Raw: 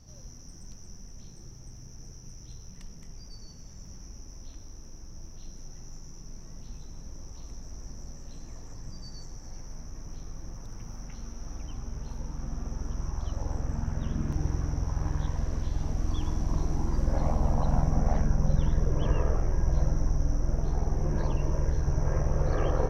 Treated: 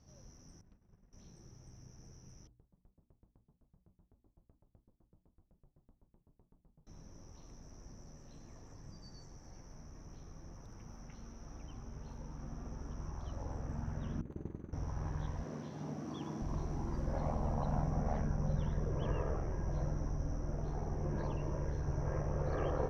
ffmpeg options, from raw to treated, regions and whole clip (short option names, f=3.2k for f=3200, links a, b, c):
-filter_complex "[0:a]asettb=1/sr,asplit=3[a][b][c];[a]atrim=end=0.614[d];[b]atrim=start=0.61:end=1.13,asetpts=PTS-STARTPTS,afade=t=in:d=0.004:c=qsin,afade=t=out:st=0.516:d=0.004:c=qsin,agate=range=-33dB:threshold=-36dB:ratio=3:release=100:detection=peak,lowpass=2.4k[e];[c]atrim=start=1.126[f];[d][e]acrossfade=d=0.004:c1=hsin:c2=qsin[g];[g][f]acrossfade=d=0.004:c1=qsin:c2=hsin,asettb=1/sr,asplit=3[h][i][j];[h]atrim=end=2.474[k];[i]atrim=start=2.47:end=6.87,asetpts=PTS-STARTPTS,afade=t=in:d=0.004:c=qsin,afade=t=out:st=4.396:d=0.004:c=qsin,lowpass=f=1.1k:w=0.5412,lowpass=f=1.1k:w=1.3066,flanger=delay=2.6:depth=4.6:regen=-61:speed=1.7:shape=triangular,aeval=exprs='val(0)*pow(10,-35*if(lt(mod(7.9*n/s,1),2*abs(7.9)/1000),1-mod(7.9*n/s,1)/(2*abs(7.9)/1000),(mod(7.9*n/s,1)-2*abs(7.9)/1000)/(1-2*abs(7.9)/1000))/20)':c=same[l];[j]atrim=start=6.866[m];[k][l]acrossfade=d=0.004:c1=hsin:c2=qsin[n];[n][m]acrossfade=d=0.004:c1=qsin:c2=hsin,asettb=1/sr,asplit=3[o][p][q];[o]atrim=end=14.214[r];[p]atrim=start=14.21:end=14.73,asetpts=PTS-STARTPTS,afade=t=in:d=0.004:c=qsin,afade=t=out:st=0.516:d=0.004:c=qsin,agate=range=-33dB:threshold=-22dB:ratio=3:release=100:detection=peak,tremolo=f=270:d=0.919,asuperstop=centerf=5400:order=8:qfactor=4.1[s];[q]atrim=start=14.726[t];[r][s]acrossfade=d=0.004:c1=hsin:c2=qsin[u];[u][t]acrossfade=d=0.004:c1=qsin:c2=hsin,asettb=1/sr,asplit=3[v][w][x];[v]atrim=end=15.434[y];[w]atrim=start=15.43:end=16.42,asetpts=PTS-STARTPTS,afade=t=in:d=0.004:c=qsin,afade=t=out:st=0.986:d=0.004:c=qsin,highpass=f=160:w=0.5412,highpass=f=160:w=1.3066,lowshelf=f=430:g=6[z];[x]atrim=start=16.416[aa];[y][z]acrossfade=d=0.004:c1=hsin:c2=qsin[ab];[ab][aa]acrossfade=d=0.004:c1=qsin:c2=hsin,highpass=f=73:p=1,highshelf=f=4.4k:g=-10,bandreject=f=60:t=h:w=6,bandreject=f=120:t=h:w=6,bandreject=f=180:t=h:w=6,bandreject=f=240:t=h:w=6,bandreject=f=300:t=h:w=6,volume=-5.5dB"